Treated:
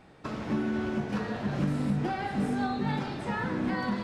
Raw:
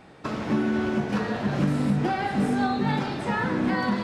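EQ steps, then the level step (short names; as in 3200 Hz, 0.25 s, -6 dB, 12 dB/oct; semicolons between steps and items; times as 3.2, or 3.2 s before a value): low shelf 78 Hz +7.5 dB; -6.0 dB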